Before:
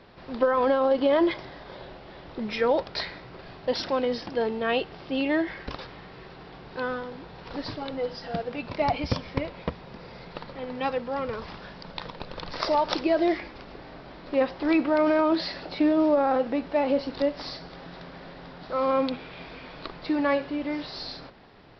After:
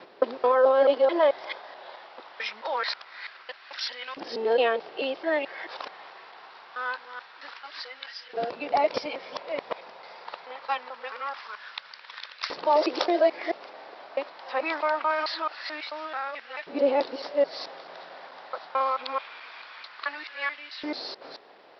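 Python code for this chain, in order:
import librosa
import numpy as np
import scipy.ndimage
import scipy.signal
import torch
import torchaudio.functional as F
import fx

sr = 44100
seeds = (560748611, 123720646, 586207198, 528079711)

y = fx.local_reverse(x, sr, ms=218.0)
y = fx.filter_lfo_highpass(y, sr, shape='saw_up', hz=0.24, low_hz=380.0, high_hz=1900.0, q=1.4)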